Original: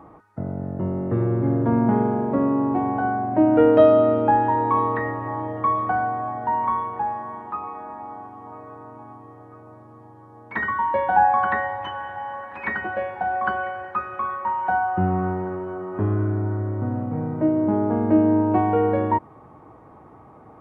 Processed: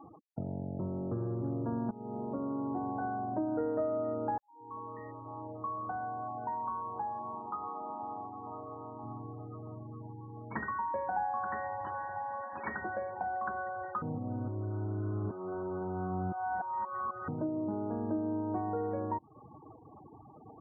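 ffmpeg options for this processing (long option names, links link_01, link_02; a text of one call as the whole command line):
ffmpeg -i in.wav -filter_complex "[0:a]asettb=1/sr,asplit=3[link_01][link_02][link_03];[link_01]atrim=end=9.034[link_04];[link_02]atrim=start=9.03:end=10.64,asetpts=PTS-STARTPTS,afade=type=in:duration=0.004:curve=qsin,afade=type=out:start_time=1.606:duration=0.004:curve=qsin,equalizer=frequency=140:width=0.68:gain=8.5[link_05];[link_03]atrim=start=10.636[link_06];[link_04][link_05]acrossfade=duration=0.004:curve1=hsin:curve2=qsin[link_07];[link_07][link_06]acrossfade=duration=0.004:curve1=qsin:curve2=hsin,asplit=5[link_08][link_09][link_10][link_11][link_12];[link_08]atrim=end=1.91,asetpts=PTS-STARTPTS,afade=type=out:start_time=1.906:duration=0.004:curve=hsin:silence=0.141254[link_13];[link_09]atrim=start=1.91:end=4.38,asetpts=PTS-STARTPTS,afade=type=in:duration=0.97:silence=0.141254,afade=type=out:start_time=2.466:duration=0.004:curve=hsin[link_14];[link_10]atrim=start=4.38:end=14.022,asetpts=PTS-STARTPTS,afade=type=in:duration=3.7[link_15];[link_11]atrim=start=14.018:end=17.282,asetpts=PTS-STARTPTS,areverse[link_16];[link_12]atrim=start=17.278[link_17];[link_13][link_14][link_15]concat=n=3:v=0:a=1[link_18];[link_18][link_16]acrossfade=duration=0.004:curve1=hsin:curve2=hsin[link_19];[link_19][link_17]acrossfade=duration=0.004:curve1=hsin:curve2=hsin,lowpass=frequency=1600:width=0.5412,lowpass=frequency=1600:width=1.3066,afftfilt=real='re*gte(hypot(re,im),0.0141)':imag='im*gte(hypot(re,im),0.0141)':win_size=1024:overlap=0.75,acompressor=threshold=-32dB:ratio=3,volume=-3.5dB" out.wav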